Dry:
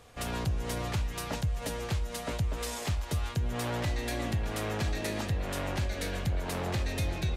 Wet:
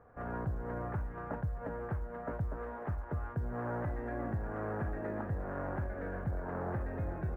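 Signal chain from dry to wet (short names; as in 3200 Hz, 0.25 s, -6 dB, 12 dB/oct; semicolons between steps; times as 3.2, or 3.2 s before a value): Chebyshev low-pass 1600 Hz, order 4; low shelf 86 Hz -4.5 dB; short-mantissa float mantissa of 6-bit; gain -2.5 dB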